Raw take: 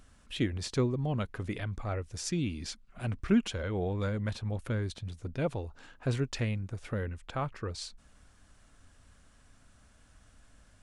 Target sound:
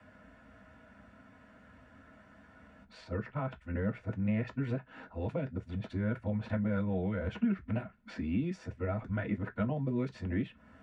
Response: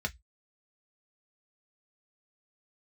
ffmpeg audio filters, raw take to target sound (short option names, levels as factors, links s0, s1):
-filter_complex "[0:a]areverse,asplit=2[s0][s1];[s1]alimiter=limit=0.0668:level=0:latency=1:release=257,volume=1.19[s2];[s0][s2]amix=inputs=2:normalize=0,acrossover=split=170 2200:gain=0.0708 1 0.0794[s3][s4][s5];[s3][s4][s5]amix=inputs=3:normalize=0,acrossover=split=200|2300[s6][s7][s8];[s6]acompressor=threshold=0.00891:ratio=4[s9];[s7]acompressor=threshold=0.01:ratio=4[s10];[s8]acompressor=threshold=0.00112:ratio=4[s11];[s9][s10][s11]amix=inputs=3:normalize=0[s12];[1:a]atrim=start_sample=2205[s13];[s12][s13]afir=irnorm=-1:irlink=0,volume=0.891"